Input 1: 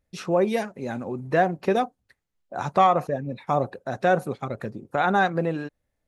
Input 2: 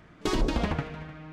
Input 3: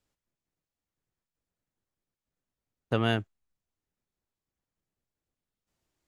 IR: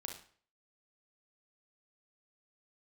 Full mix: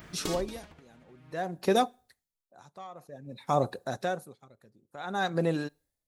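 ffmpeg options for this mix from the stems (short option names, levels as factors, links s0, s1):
-filter_complex "[0:a]aexciter=amount=2.8:drive=6.5:freq=3600,volume=0.841,asplit=2[s0][s1];[s1]volume=0.0794[s2];[1:a]aemphasis=mode=production:type=75kf,acompressor=threshold=0.0355:ratio=6,volume=1.06,asplit=2[s3][s4];[s4]volume=0.473[s5];[3:a]atrim=start_sample=2205[s6];[s2][s5]amix=inputs=2:normalize=0[s7];[s7][s6]afir=irnorm=-1:irlink=0[s8];[s0][s3][s8]amix=inputs=3:normalize=0,aeval=exprs='val(0)*pow(10,-26*(0.5-0.5*cos(2*PI*0.54*n/s))/20)':c=same"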